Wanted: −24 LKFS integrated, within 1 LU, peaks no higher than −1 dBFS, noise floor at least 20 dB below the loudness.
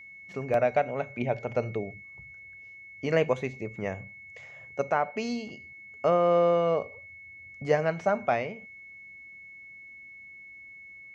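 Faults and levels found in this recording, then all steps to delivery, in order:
number of dropouts 1; longest dropout 1.9 ms; interfering tone 2,200 Hz; level of the tone −45 dBFS; integrated loudness −28.0 LKFS; sample peak −11.0 dBFS; target loudness −24.0 LKFS
→ repair the gap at 0:00.54, 1.9 ms
notch filter 2,200 Hz, Q 30
level +4 dB

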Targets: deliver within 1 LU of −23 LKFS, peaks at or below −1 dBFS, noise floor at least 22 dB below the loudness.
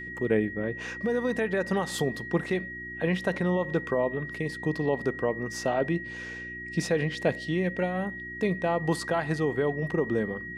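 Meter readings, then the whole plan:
mains hum 60 Hz; hum harmonics up to 360 Hz; level of the hum −42 dBFS; interfering tone 1,900 Hz; level of the tone −37 dBFS; integrated loudness −29.0 LKFS; sample peak −11.0 dBFS; target loudness −23.0 LKFS
→ hum removal 60 Hz, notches 6
notch filter 1,900 Hz, Q 30
level +6 dB

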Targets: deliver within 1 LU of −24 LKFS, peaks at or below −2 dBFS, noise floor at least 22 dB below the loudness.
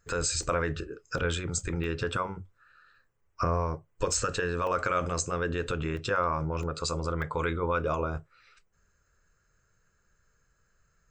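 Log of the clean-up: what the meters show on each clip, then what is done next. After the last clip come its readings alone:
number of dropouts 8; longest dropout 1.8 ms; integrated loudness −30.5 LKFS; sample peak −15.0 dBFS; target loudness −24.0 LKFS
→ repair the gap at 0:00.43/0:01.18/0:01.84/0:04.14/0:04.67/0:05.97/0:06.63/0:07.22, 1.8 ms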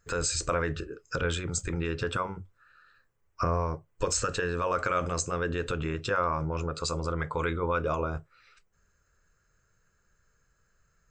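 number of dropouts 0; integrated loudness −30.5 LKFS; sample peak −15.0 dBFS; target loudness −24.0 LKFS
→ level +6.5 dB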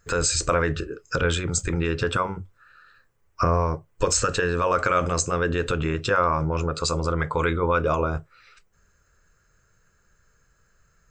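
integrated loudness −24.0 LKFS; sample peak −8.5 dBFS; background noise floor −65 dBFS

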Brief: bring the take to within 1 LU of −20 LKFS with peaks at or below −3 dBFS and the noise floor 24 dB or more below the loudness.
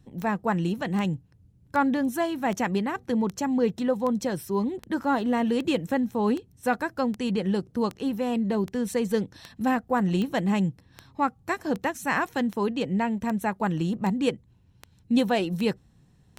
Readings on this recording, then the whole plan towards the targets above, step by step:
number of clicks 22; integrated loudness −27.0 LKFS; sample peak −11.0 dBFS; target loudness −20.0 LKFS
→ click removal
level +7 dB

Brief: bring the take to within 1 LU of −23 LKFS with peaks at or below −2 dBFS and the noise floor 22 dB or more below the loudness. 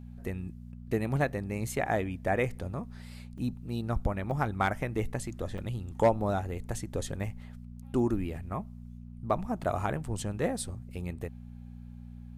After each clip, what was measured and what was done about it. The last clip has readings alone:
number of dropouts 3; longest dropout 4.0 ms; mains hum 60 Hz; hum harmonics up to 240 Hz; level of the hum −43 dBFS; integrated loudness −33.0 LKFS; sample peak −14.5 dBFS; target loudness −23.0 LKFS
→ repair the gap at 0:03.38/0:04.31/0:05.58, 4 ms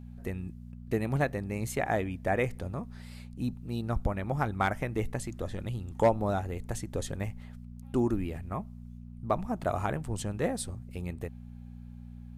number of dropouts 0; mains hum 60 Hz; hum harmonics up to 240 Hz; level of the hum −43 dBFS
→ hum removal 60 Hz, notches 4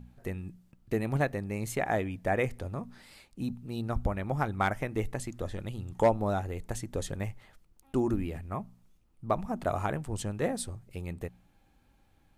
mains hum none found; integrated loudness −33.0 LKFS; sample peak −14.5 dBFS; target loudness −23.0 LKFS
→ level +10 dB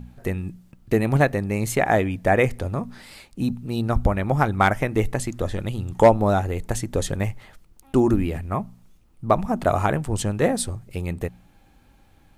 integrated loudness −23.0 LKFS; sample peak −4.5 dBFS; background noise floor −55 dBFS

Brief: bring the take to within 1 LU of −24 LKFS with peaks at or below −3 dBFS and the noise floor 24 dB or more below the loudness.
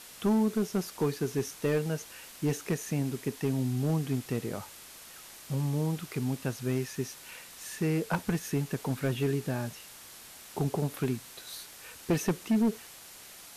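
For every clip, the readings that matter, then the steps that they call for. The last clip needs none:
share of clipped samples 0.8%; peaks flattened at −21.0 dBFS; background noise floor −50 dBFS; target noise floor −56 dBFS; integrated loudness −32.0 LKFS; sample peak −21.0 dBFS; target loudness −24.0 LKFS
→ clipped peaks rebuilt −21 dBFS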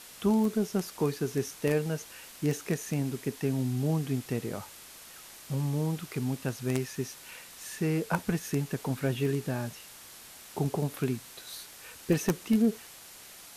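share of clipped samples 0.0%; background noise floor −50 dBFS; target noise floor −55 dBFS
→ broadband denoise 6 dB, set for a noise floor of −50 dBFS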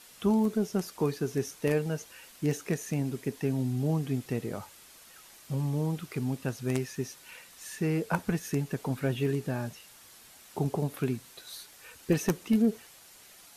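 background noise floor −54 dBFS; target noise floor −55 dBFS
→ broadband denoise 6 dB, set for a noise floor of −54 dBFS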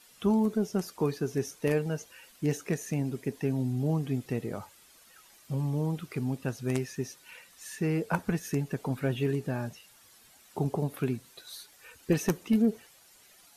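background noise floor −58 dBFS; integrated loudness −31.0 LKFS; sample peak −12.0 dBFS; target loudness −24.0 LKFS
→ level +7 dB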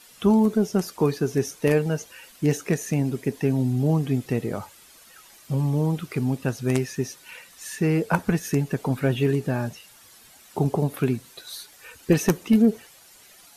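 integrated loudness −24.0 LKFS; sample peak −5.0 dBFS; background noise floor −51 dBFS

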